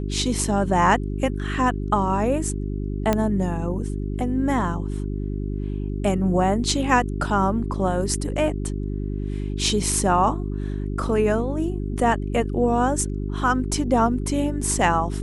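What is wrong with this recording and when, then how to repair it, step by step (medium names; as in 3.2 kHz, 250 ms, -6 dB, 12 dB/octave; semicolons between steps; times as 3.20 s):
hum 50 Hz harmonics 8 -27 dBFS
3.13 s: pop -7 dBFS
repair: de-click; de-hum 50 Hz, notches 8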